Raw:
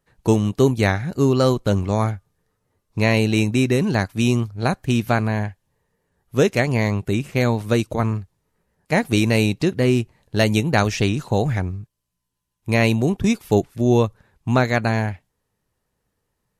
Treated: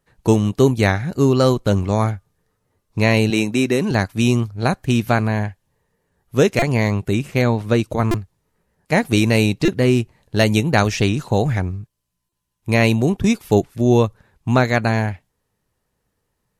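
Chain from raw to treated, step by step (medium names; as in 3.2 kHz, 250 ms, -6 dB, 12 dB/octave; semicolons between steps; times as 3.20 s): 3.30–3.91 s: high-pass 190 Hz 12 dB/octave; 7.41–7.84 s: treble shelf 6.6 kHz -11 dB; buffer glitch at 6.59/8.11/9.65/12.29 s, samples 128, times 10; trim +2 dB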